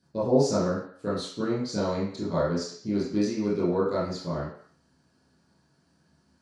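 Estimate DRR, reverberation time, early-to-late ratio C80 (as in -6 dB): -11.0 dB, 0.55 s, 6.5 dB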